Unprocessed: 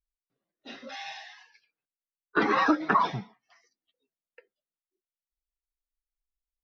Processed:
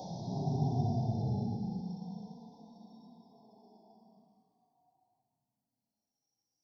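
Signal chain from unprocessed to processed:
extreme stretch with random phases 20×, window 0.05 s, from 0:03.12
elliptic band-stop filter 790–4,500 Hz, stop band 40 dB

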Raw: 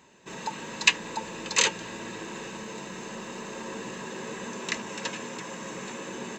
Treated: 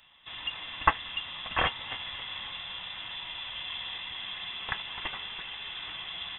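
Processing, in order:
0:01.66–0:03.98: feedback delay that plays each chunk backwards 137 ms, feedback 62%, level −8.5 dB
voice inversion scrambler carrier 3,700 Hz
level −1.5 dB

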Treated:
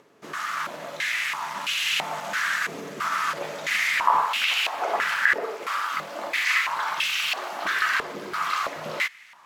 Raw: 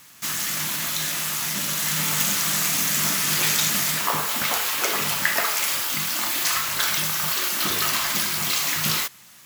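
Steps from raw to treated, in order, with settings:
upward compression, threshold −41 dBFS
boost into a limiter +11.5 dB
band-pass on a step sequencer 3 Hz 440–2,700 Hz

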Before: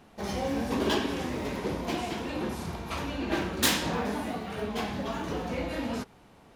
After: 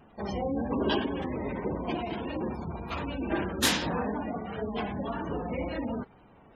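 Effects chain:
gate on every frequency bin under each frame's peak −20 dB strong
pitch vibrato 1.8 Hz 38 cents

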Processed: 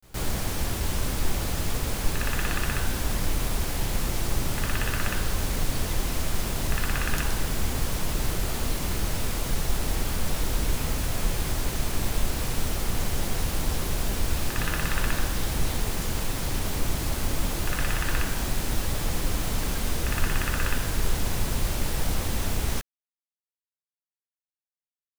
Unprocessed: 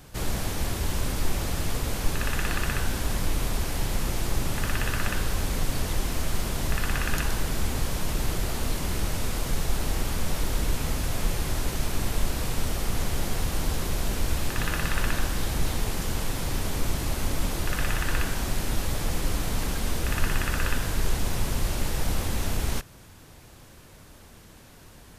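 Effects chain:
bit-depth reduction 6 bits, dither none
echo ahead of the sound 118 ms −23.5 dB

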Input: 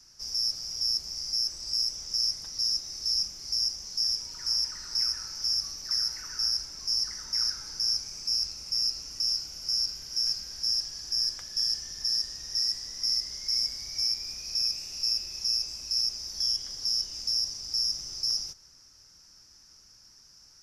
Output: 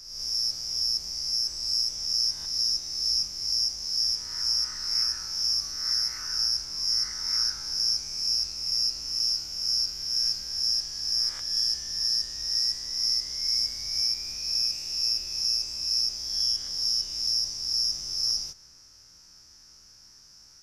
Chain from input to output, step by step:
peak hold with a rise ahead of every peak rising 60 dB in 0.97 s

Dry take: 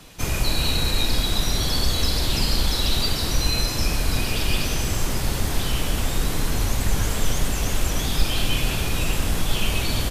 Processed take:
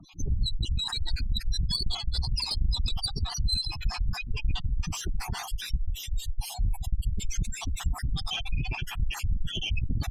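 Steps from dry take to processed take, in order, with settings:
time-frequency cells dropped at random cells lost 45%
0:05.81–0:07.02: phaser with its sweep stopped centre 570 Hz, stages 4
gate on every frequency bin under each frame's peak −10 dB strong
tube saturation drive 22 dB, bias 0.55
0:01.84–0:02.64: mains-hum notches 60/120/180/240/300/360/420 Hz
level +3 dB

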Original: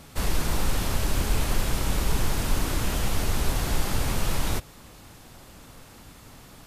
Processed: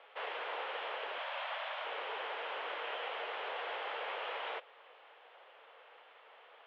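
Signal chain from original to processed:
Chebyshev band-pass filter 460–3,200 Hz, order 4
0:01.18–0:01.85: frequency shifter +120 Hz
level −4.5 dB

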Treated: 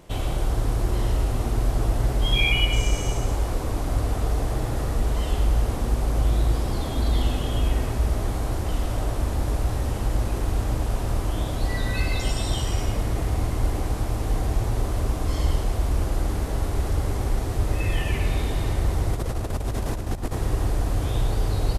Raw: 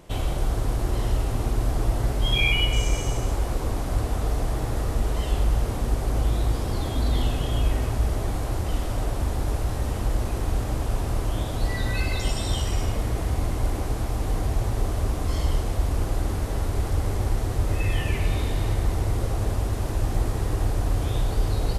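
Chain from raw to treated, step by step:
0:19.13–0:20.36: compressor whose output falls as the input rises −26 dBFS, ratio −0.5
surface crackle 35 per second −49 dBFS
slap from a distant wall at 19 metres, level −8 dB

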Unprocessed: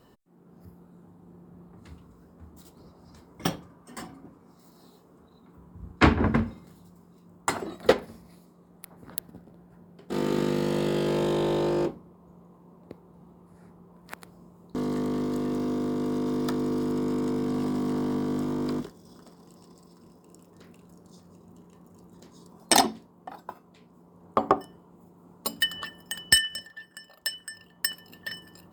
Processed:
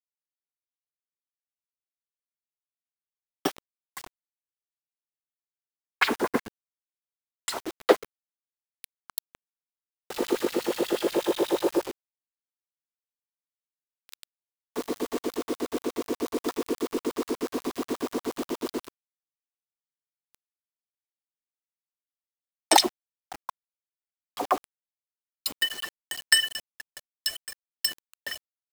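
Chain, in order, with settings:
auto-filter high-pass sine 8.3 Hz 320–4,500 Hz
bit-depth reduction 6 bits, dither none
level −1 dB

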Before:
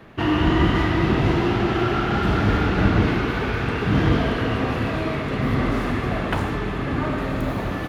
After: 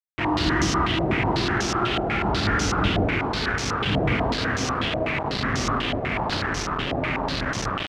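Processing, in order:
delay that swaps between a low-pass and a high-pass 177 ms, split 920 Hz, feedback 52%, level −8 dB
bit reduction 4 bits
low-pass on a step sequencer 8.1 Hz 660–5,900 Hz
level −6 dB

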